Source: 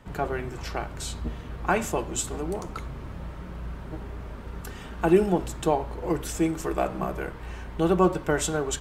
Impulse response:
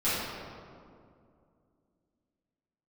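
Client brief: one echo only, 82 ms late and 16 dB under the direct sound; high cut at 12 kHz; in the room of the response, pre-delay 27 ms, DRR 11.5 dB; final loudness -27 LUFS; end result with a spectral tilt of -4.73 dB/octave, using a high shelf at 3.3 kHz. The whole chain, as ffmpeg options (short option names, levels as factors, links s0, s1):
-filter_complex "[0:a]lowpass=12000,highshelf=f=3300:g=-7.5,aecho=1:1:82:0.158,asplit=2[s0][s1];[1:a]atrim=start_sample=2205,adelay=27[s2];[s1][s2]afir=irnorm=-1:irlink=0,volume=0.0668[s3];[s0][s3]amix=inputs=2:normalize=0,volume=1.12"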